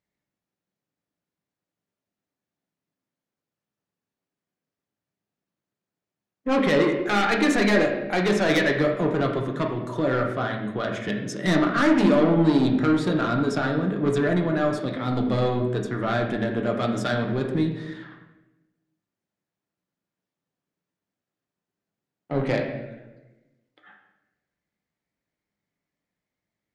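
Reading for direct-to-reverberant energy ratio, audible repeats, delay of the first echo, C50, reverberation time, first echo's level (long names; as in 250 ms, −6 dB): 1.5 dB, no echo audible, no echo audible, 6.0 dB, 1.0 s, no echo audible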